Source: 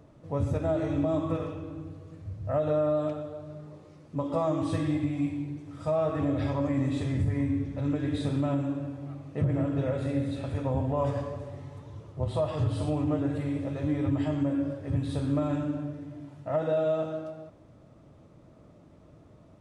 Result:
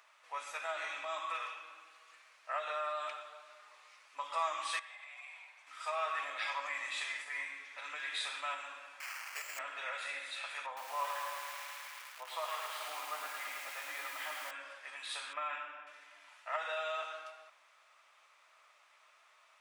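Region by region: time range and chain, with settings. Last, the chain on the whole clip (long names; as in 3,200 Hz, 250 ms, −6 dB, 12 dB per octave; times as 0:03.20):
0:04.79–0:05.67: inverse Chebyshev high-pass filter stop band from 290 Hz + downward compressor 5 to 1, threshold −50 dBFS + tilt shelving filter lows +7 dB, about 1,100 Hz
0:09.00–0:09.59: linear delta modulator 16 kbit/s, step −37.5 dBFS + downward compressor, threshold −27 dBFS + bad sample-rate conversion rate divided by 6×, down filtered, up hold
0:10.66–0:14.51: high-shelf EQ 3,100 Hz −11 dB + notch filter 2,600 Hz, Q 16 + feedback echo at a low word length 108 ms, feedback 80%, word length 8 bits, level −6.5 dB
0:15.33–0:15.87: Savitzky-Golay smoothing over 25 samples + one half of a high-frequency compander decoder only
whole clip: high-pass filter 1,100 Hz 24 dB per octave; parametric band 2,400 Hz +6.5 dB 0.7 octaves; level +4.5 dB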